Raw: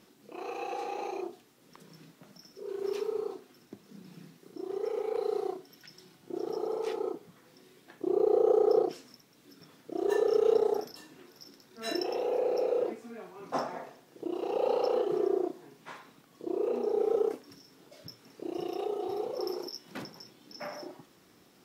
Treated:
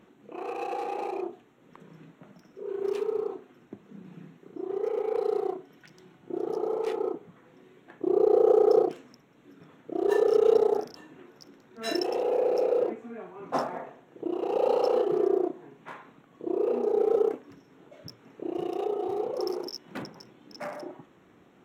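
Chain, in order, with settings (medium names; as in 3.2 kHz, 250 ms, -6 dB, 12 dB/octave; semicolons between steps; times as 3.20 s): local Wiener filter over 9 samples; trim +4 dB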